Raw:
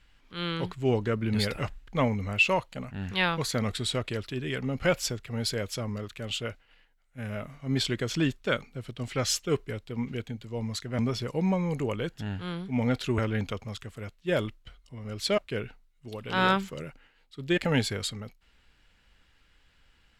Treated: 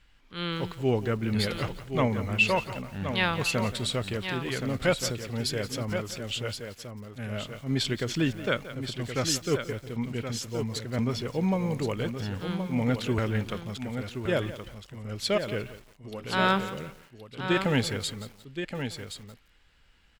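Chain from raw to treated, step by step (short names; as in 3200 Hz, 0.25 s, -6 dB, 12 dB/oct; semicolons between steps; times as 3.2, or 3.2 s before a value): echo 1.072 s -8 dB; lo-fi delay 0.175 s, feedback 35%, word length 7-bit, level -14 dB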